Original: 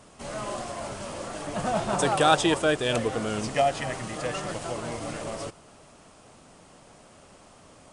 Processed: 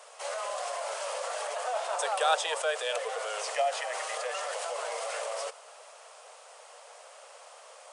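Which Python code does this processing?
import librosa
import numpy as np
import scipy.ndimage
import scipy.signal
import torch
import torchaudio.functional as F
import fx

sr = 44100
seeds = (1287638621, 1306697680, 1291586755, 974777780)

p1 = scipy.signal.sosfilt(scipy.signal.butter(12, 470.0, 'highpass', fs=sr, output='sos'), x)
p2 = fx.over_compress(p1, sr, threshold_db=-38.0, ratio=-1.0)
p3 = p1 + F.gain(torch.from_numpy(p2), -1.0).numpy()
y = F.gain(torch.from_numpy(p3), -5.5).numpy()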